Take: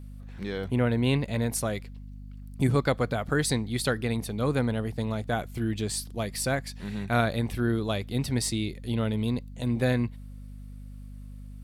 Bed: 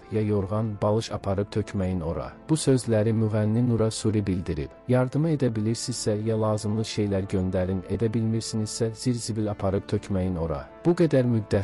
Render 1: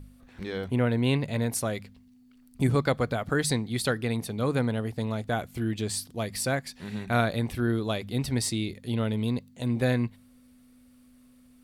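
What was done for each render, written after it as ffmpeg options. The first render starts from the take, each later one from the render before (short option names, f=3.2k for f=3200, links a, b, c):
-af "bandreject=f=50:t=h:w=4,bandreject=f=100:t=h:w=4,bandreject=f=150:t=h:w=4,bandreject=f=200:t=h:w=4"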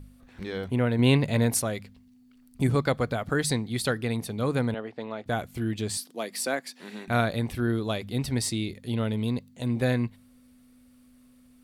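-filter_complex "[0:a]asettb=1/sr,asplit=3[a][b][c];[a]atrim=end=4.744[d];[b]atrim=start=4.74:end=5.26,asetpts=PTS-STARTPTS,afade=t=in:d=0.004:c=qsin,afade=t=out:st=0.516:d=0.004:c=qsin,highpass=320,lowpass=3k[e];[c]atrim=start=5.256[f];[d][e]acrossfade=d=0.004:c1=hsin:c2=qsin[g];[g][f]acrossfade=d=0.004:c1=qsin:c2=hsin,asettb=1/sr,asplit=3[h][i][j];[h]atrim=end=5.974[k];[i]atrim=start=5.97:end=7.08,asetpts=PTS-STARTPTS,afade=t=in:d=0.004:c=qsin,afade=t=out:st=1.106:d=0.004:c=qsin,highpass=f=240:w=0.5412,highpass=f=240:w=1.3066[l];[j]atrim=start=7.076[m];[k][l]acrossfade=d=0.004:c1=hsin:c2=qsin[n];[n][m]acrossfade=d=0.004:c1=qsin:c2=hsin,asplit=3[o][p][q];[o]atrim=end=0.992[r];[p]atrim=start=0.988:end=1.622,asetpts=PTS-STARTPTS,volume=4.5dB[s];[q]atrim=start=1.618[t];[r][s]acrossfade=d=0.004:c1=hsin:c2=hsin[u];[u][t]acrossfade=d=0.004:c1=hsin:c2=hsin"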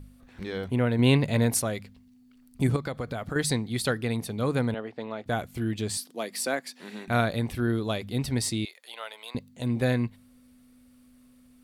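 -filter_complex "[0:a]asettb=1/sr,asplit=3[a][b][c];[a]atrim=end=2.764[d];[b]atrim=start=2.76:end=3.36,asetpts=PTS-STARTPTS,afade=t=in:d=0.004:c=qsin,afade=t=out:st=0.596:d=0.004:c=qsin,acompressor=threshold=-28dB:ratio=5:attack=3.2:release=140:knee=1:detection=peak[e];[c]atrim=start=3.356[f];[d][e]acrossfade=d=0.004:c1=hsin:c2=qsin[g];[g][f]acrossfade=d=0.004:c1=qsin:c2=hsin,asettb=1/sr,asplit=3[h][i][j];[h]atrim=end=8.654[k];[i]atrim=start=8.65:end=9.35,asetpts=PTS-STARTPTS,afade=t=in:d=0.004:c=qsin,afade=t=out:st=0.696:d=0.004:c=qsin,highpass=f=710:w=0.5412,highpass=f=710:w=1.3066[l];[j]atrim=start=9.346[m];[k][l]acrossfade=d=0.004:c1=hsin:c2=qsin[n];[n][m]acrossfade=d=0.004:c1=qsin:c2=hsin"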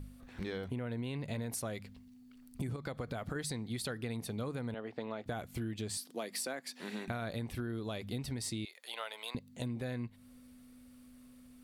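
-af "alimiter=limit=-19dB:level=0:latency=1:release=67,acompressor=threshold=-36dB:ratio=6"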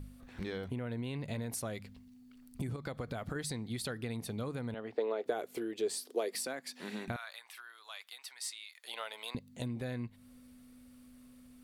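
-filter_complex "[0:a]asettb=1/sr,asplit=3[a][b][c];[a]atrim=end=4.954[d];[b]atrim=start=4.95:end=6.35,asetpts=PTS-STARTPTS,afade=t=in:d=0.004:c=qsin,afade=t=out:st=1.396:d=0.004:c=qsin,highpass=f=410:t=q:w=4.3[e];[c]atrim=start=6.346[f];[d][e]acrossfade=d=0.004:c1=hsin:c2=qsin[g];[g][f]acrossfade=d=0.004:c1=qsin:c2=hsin,asettb=1/sr,asplit=3[h][i][j];[h]atrim=end=7.164[k];[i]atrim=start=7.16:end=8.84,asetpts=PTS-STARTPTS,afade=t=in:d=0.004:c=qsin,afade=t=out:st=1.676:d=0.004:c=qsin,highpass=f=980:w=0.5412,highpass=f=980:w=1.3066[l];[j]atrim=start=8.836[m];[k][l]acrossfade=d=0.004:c1=hsin:c2=qsin[n];[n][m]acrossfade=d=0.004:c1=qsin:c2=hsin"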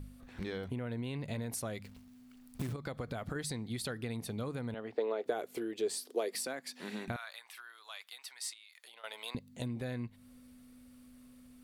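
-filter_complex "[0:a]asplit=3[a][b][c];[a]afade=t=out:st=1.83:d=0.02[d];[b]acrusher=bits=3:mode=log:mix=0:aa=0.000001,afade=t=in:st=1.83:d=0.02,afade=t=out:st=2.72:d=0.02[e];[c]afade=t=in:st=2.72:d=0.02[f];[d][e][f]amix=inputs=3:normalize=0,asettb=1/sr,asplit=3[g][h][i];[g]atrim=end=8.534[j];[h]atrim=start=8.53:end=9.04,asetpts=PTS-STARTPTS,afade=t=in:d=0.004:c=qsin,afade=t=out:st=0.506:d=0.004:c=qsin,acompressor=threshold=-51dB:ratio=12:attack=3.2:release=140:knee=1:detection=peak[k];[i]atrim=start=9.036[l];[j][k]acrossfade=d=0.004:c1=hsin:c2=qsin[m];[m][l]acrossfade=d=0.004:c1=qsin:c2=hsin"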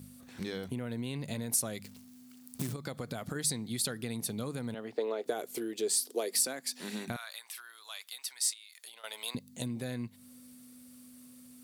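-af "highpass=160,bass=f=250:g=6,treble=f=4k:g=12"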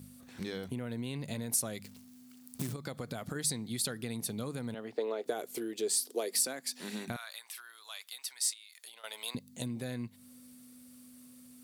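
-af "volume=-1dB"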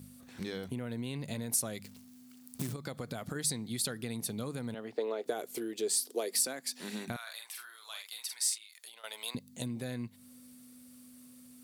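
-filter_complex "[0:a]asettb=1/sr,asplit=3[a][b][c];[a]atrim=end=7.224[d];[b]atrim=start=7.22:end=8.67,asetpts=PTS-STARTPTS,afade=t=in:d=0.004:c=qsin,afade=t=out:st=1.446:d=0.004:c=qsin,asplit=2[e][f];[f]adelay=46,volume=-4.5dB[g];[e][g]amix=inputs=2:normalize=0,atrim=end_sample=63945[h];[c]atrim=start=8.666[i];[d][h]acrossfade=d=0.004:c1=hsin:c2=qsin[j];[j][i]acrossfade=d=0.004:c1=qsin:c2=hsin"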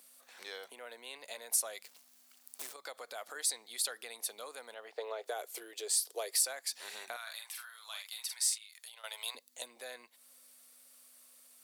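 -af "highpass=f=560:w=0.5412,highpass=f=560:w=1.3066"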